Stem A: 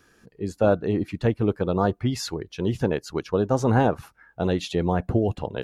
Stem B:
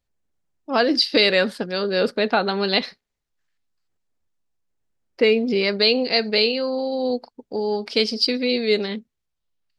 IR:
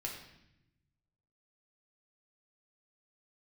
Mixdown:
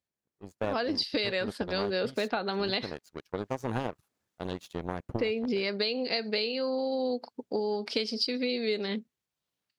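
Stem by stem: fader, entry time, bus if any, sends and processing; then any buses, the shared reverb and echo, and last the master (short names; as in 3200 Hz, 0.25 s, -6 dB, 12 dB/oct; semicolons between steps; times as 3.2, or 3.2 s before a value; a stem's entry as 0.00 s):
-4.0 dB, 0.00 s, no send, high shelf 6300 Hz +11.5 dB; power-law curve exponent 2
-7.5 dB, 0.00 s, no send, HPF 120 Hz; AGC gain up to 12 dB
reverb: off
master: compressor 10:1, threshold -26 dBFS, peak gain reduction 11 dB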